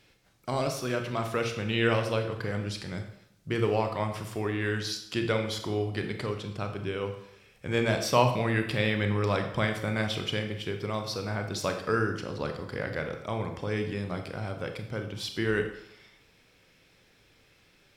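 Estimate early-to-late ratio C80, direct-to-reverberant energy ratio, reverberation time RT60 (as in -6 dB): 10.5 dB, 5.0 dB, 0.75 s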